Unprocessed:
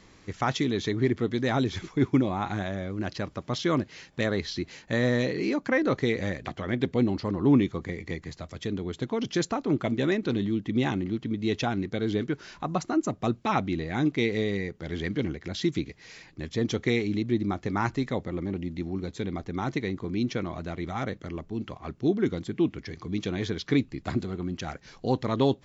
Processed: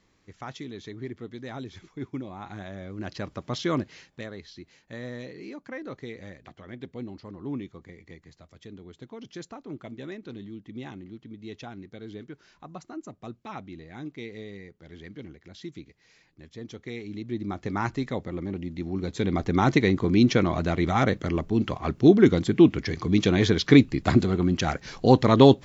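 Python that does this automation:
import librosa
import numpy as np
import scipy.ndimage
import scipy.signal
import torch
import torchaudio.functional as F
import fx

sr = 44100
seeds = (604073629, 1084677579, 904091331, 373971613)

y = fx.gain(x, sr, db=fx.line((2.25, -12.0), (3.3, -1.0), (3.9, -1.0), (4.31, -13.0), (16.84, -13.0), (17.67, -1.0), (18.75, -1.0), (19.48, 9.0)))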